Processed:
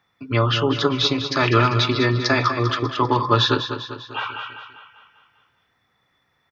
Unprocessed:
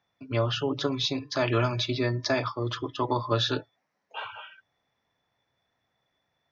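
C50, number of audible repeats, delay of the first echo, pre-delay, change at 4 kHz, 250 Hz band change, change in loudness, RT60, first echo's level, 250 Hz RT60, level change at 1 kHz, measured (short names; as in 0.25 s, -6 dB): none, 5, 0.198 s, none, +8.5 dB, +8.0 dB, +8.0 dB, none, -9.5 dB, none, +11.0 dB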